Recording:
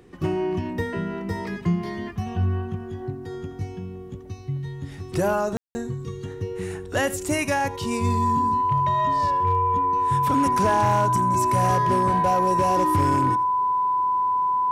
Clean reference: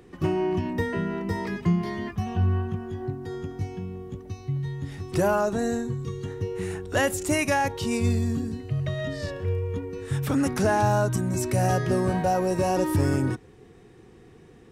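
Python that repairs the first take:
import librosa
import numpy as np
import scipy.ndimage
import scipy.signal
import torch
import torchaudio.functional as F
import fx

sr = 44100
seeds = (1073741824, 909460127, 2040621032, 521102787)

y = fx.fix_declip(x, sr, threshold_db=-14.0)
y = fx.notch(y, sr, hz=1000.0, q=30.0)
y = fx.fix_ambience(y, sr, seeds[0], print_start_s=3.98, print_end_s=4.48, start_s=5.57, end_s=5.75)
y = fx.fix_echo_inverse(y, sr, delay_ms=83, level_db=-18.0)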